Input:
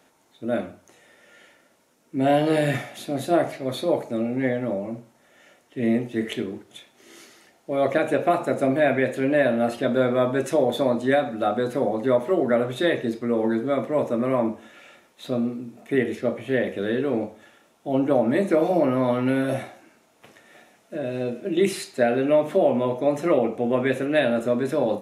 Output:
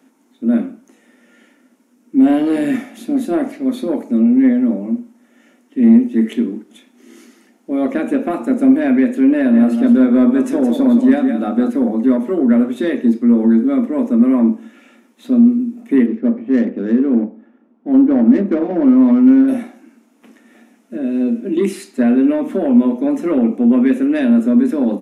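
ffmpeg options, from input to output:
ffmpeg -i in.wav -filter_complex "[0:a]asplit=3[link_01][link_02][link_03];[link_01]afade=type=out:start_time=9.53:duration=0.02[link_04];[link_02]aecho=1:1:169:0.398,afade=type=in:start_time=9.53:duration=0.02,afade=type=out:start_time=11.69:duration=0.02[link_05];[link_03]afade=type=in:start_time=11.69:duration=0.02[link_06];[link_04][link_05][link_06]amix=inputs=3:normalize=0,asettb=1/sr,asplit=3[link_07][link_08][link_09];[link_07]atrim=end=16.064[link_10];[link_08]atrim=start=16.06:end=19.48,asetpts=PTS-STARTPTS,afade=type=in:duration=0.004:curve=qsin,afade=type=out:start_time=3.416:duration=0.004:curve=qsin,adynamicsmooth=sensitivity=1.5:basefreq=1200[link_11];[link_09]atrim=start=19.476[link_12];[link_10][link_11]acrossfade=duration=0.004:curve1=hsin:curve2=qsin[link_13];[link_13][link_12]acrossfade=duration=0.004:curve1=qsin:curve2=hsin,lowshelf=frequency=170:width_type=q:width=3:gain=-9.5,acontrast=85,equalizer=frequency=250:width_type=o:width=0.67:gain=11,equalizer=frequency=630:width_type=o:width=0.67:gain=-4,equalizer=frequency=4000:width_type=o:width=0.67:gain=-5,volume=-7dB" out.wav

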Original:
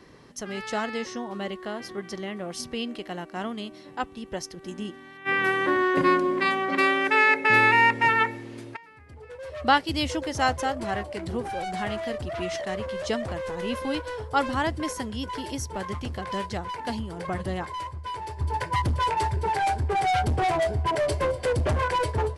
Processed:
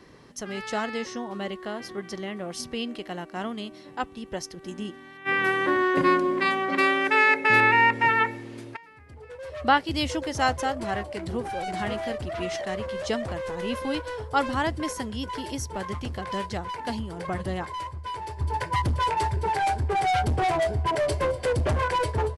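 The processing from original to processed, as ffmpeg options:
ffmpeg -i in.wav -filter_complex "[0:a]asettb=1/sr,asplit=3[link_01][link_02][link_03];[link_01]atrim=end=7.604[link_04];[link_02]atrim=start=7.6:end=9.91,asetpts=PTS-STARTPTS,afade=type=in:duration=0.004:curve=qsin,afade=type=out:start_time=2.306:duration=0.004:curve=qsin,acrossover=split=3500[link_05][link_06];[link_06]acompressor=threshold=-43dB:ratio=4:attack=1:release=60[link_07];[link_05][link_07]amix=inputs=2:normalize=0[link_08];[link_03]atrim=start=9.906[link_09];[link_04][link_08]acrossfade=duration=0.004:curve1=hsin:curve2=qsin[link_10];[link_10][link_09]acrossfade=duration=0.004:curve1=qsin:curve2=hsin,asplit=2[link_11][link_12];[link_12]afade=type=in:start_time=11.13:duration=0.01,afade=type=out:start_time=11.6:duration=0.01,aecho=0:1:530|1060|1590|2120:0.375837|0.150335|0.060134|0.0240536[link_13];[link_11][link_13]amix=inputs=2:normalize=0" out.wav

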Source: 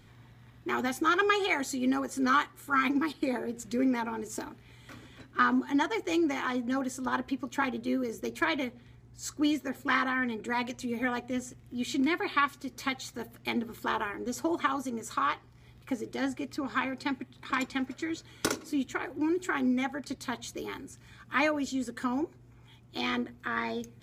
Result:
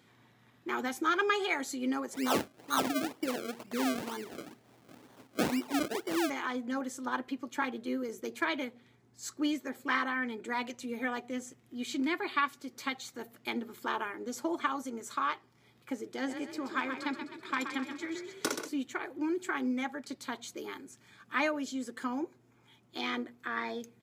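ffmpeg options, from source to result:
ffmpeg -i in.wav -filter_complex "[0:a]asplit=3[link_01][link_02][link_03];[link_01]afade=type=out:start_time=2.13:duration=0.02[link_04];[link_02]acrusher=samples=33:mix=1:aa=0.000001:lfo=1:lforange=33:lforate=2.1,afade=type=in:start_time=2.13:duration=0.02,afade=type=out:start_time=6.29:duration=0.02[link_05];[link_03]afade=type=in:start_time=6.29:duration=0.02[link_06];[link_04][link_05][link_06]amix=inputs=3:normalize=0,asplit=3[link_07][link_08][link_09];[link_07]afade=type=out:start_time=16.27:duration=0.02[link_10];[link_08]asplit=7[link_11][link_12][link_13][link_14][link_15][link_16][link_17];[link_12]adelay=128,afreqshift=30,volume=-8dB[link_18];[link_13]adelay=256,afreqshift=60,volume=-13.7dB[link_19];[link_14]adelay=384,afreqshift=90,volume=-19.4dB[link_20];[link_15]adelay=512,afreqshift=120,volume=-25dB[link_21];[link_16]adelay=640,afreqshift=150,volume=-30.7dB[link_22];[link_17]adelay=768,afreqshift=180,volume=-36.4dB[link_23];[link_11][link_18][link_19][link_20][link_21][link_22][link_23]amix=inputs=7:normalize=0,afade=type=in:start_time=16.27:duration=0.02,afade=type=out:start_time=18.68:duration=0.02[link_24];[link_09]afade=type=in:start_time=18.68:duration=0.02[link_25];[link_10][link_24][link_25]amix=inputs=3:normalize=0,highpass=210,volume=-3dB" out.wav

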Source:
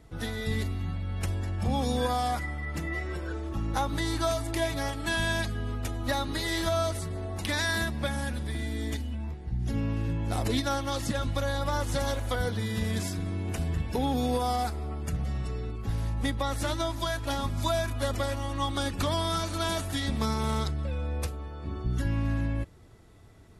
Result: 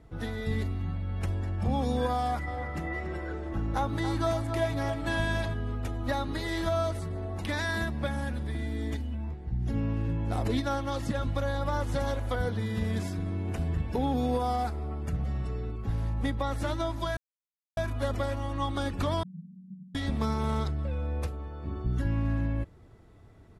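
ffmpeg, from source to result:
ffmpeg -i in.wav -filter_complex "[0:a]asplit=3[link_01][link_02][link_03];[link_01]afade=type=out:start_time=2.46:duration=0.02[link_04];[link_02]asplit=2[link_05][link_06];[link_06]adelay=281,lowpass=frequency=2700:poles=1,volume=-8dB,asplit=2[link_07][link_08];[link_08]adelay=281,lowpass=frequency=2700:poles=1,volume=0.52,asplit=2[link_09][link_10];[link_10]adelay=281,lowpass=frequency=2700:poles=1,volume=0.52,asplit=2[link_11][link_12];[link_12]adelay=281,lowpass=frequency=2700:poles=1,volume=0.52,asplit=2[link_13][link_14];[link_14]adelay=281,lowpass=frequency=2700:poles=1,volume=0.52,asplit=2[link_15][link_16];[link_16]adelay=281,lowpass=frequency=2700:poles=1,volume=0.52[link_17];[link_05][link_07][link_09][link_11][link_13][link_15][link_17]amix=inputs=7:normalize=0,afade=type=in:start_time=2.46:duration=0.02,afade=type=out:start_time=5.53:duration=0.02[link_18];[link_03]afade=type=in:start_time=5.53:duration=0.02[link_19];[link_04][link_18][link_19]amix=inputs=3:normalize=0,asettb=1/sr,asplit=3[link_20][link_21][link_22];[link_20]atrim=end=19.234[link_23];[link_21]atrim=start=19.23:end=19.95,asetpts=PTS-STARTPTS,afade=type=in:duration=0.004:curve=qsin,afade=type=out:start_time=0.716:duration=0.004:curve=qsin,asuperpass=centerf=180:order=8:qfactor=2.9[link_24];[link_22]atrim=start=19.946[link_25];[link_23][link_24]acrossfade=duration=0.004:curve1=hsin:curve2=qsin[link_26];[link_26][link_25]acrossfade=duration=0.004:curve1=qsin:curve2=hsin,asplit=3[link_27][link_28][link_29];[link_27]atrim=end=17.17,asetpts=PTS-STARTPTS,afade=type=out:start_time=17.166:duration=0.004:curve=hsin[link_30];[link_28]atrim=start=17.17:end=17.77,asetpts=PTS-STARTPTS,volume=0[link_31];[link_29]atrim=start=17.77,asetpts=PTS-STARTPTS,afade=type=in:duration=0.004:curve=hsin[link_32];[link_30][link_31][link_32]concat=n=3:v=0:a=1,highshelf=frequency=3000:gain=-11" out.wav

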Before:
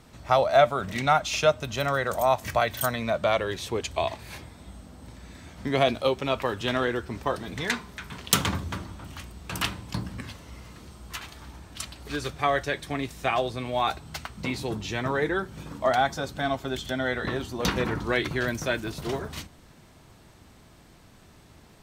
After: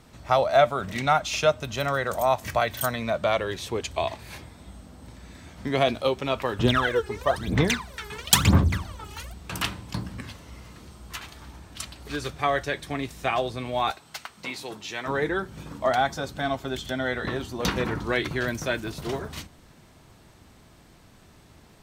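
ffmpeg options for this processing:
ffmpeg -i in.wav -filter_complex "[0:a]asettb=1/sr,asplit=3[link_01][link_02][link_03];[link_01]atrim=end=6.594[link_04];[link_02]atrim=start=6.59:end=9.34,asetpts=PTS-STARTPTS,afade=type=in:duration=0.004:curve=qsin,afade=type=out:start_time=2.746:duration=0.004:curve=qsin,aphaser=in_gain=1:out_gain=1:delay=2.4:decay=0.8:speed=1:type=sinusoidal[link_05];[link_03]atrim=start=9.336[link_06];[link_04][link_05]acrossfade=duration=0.004:curve1=hsin:curve2=qsin[link_07];[link_07][link_06]acrossfade=duration=0.004:curve1=qsin:curve2=hsin,asettb=1/sr,asplit=3[link_08][link_09][link_10];[link_08]atrim=end=13.914[link_11];[link_09]atrim=start=13.91:end=15.08,asetpts=PTS-STARTPTS,afade=type=in:duration=0.004:curve=qsin,afade=type=out:start_time=1.166:duration=0.004:curve=qsin,highpass=frequency=710:poles=1[link_12];[link_10]atrim=start=15.076[link_13];[link_11][link_12]acrossfade=duration=0.004:curve1=hsin:curve2=qsin[link_14];[link_14][link_13]acrossfade=duration=0.004:curve1=qsin:curve2=hsin" out.wav

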